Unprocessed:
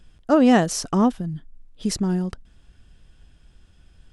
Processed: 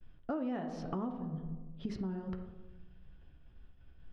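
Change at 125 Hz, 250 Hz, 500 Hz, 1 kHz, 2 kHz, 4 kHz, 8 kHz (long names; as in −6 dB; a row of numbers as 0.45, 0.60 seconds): −14.0 dB, −18.0 dB, −19.0 dB, −19.0 dB, −22.5 dB, −25.0 dB, below −35 dB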